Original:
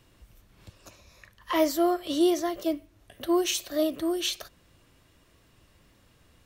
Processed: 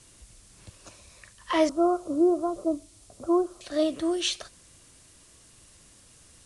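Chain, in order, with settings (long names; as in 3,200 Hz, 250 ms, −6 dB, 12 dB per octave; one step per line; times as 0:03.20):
0:01.69–0:03.61: Butterworth low-pass 1,400 Hz 96 dB per octave
background noise violet −49 dBFS
level +1 dB
Ogg Vorbis 48 kbit/s 22,050 Hz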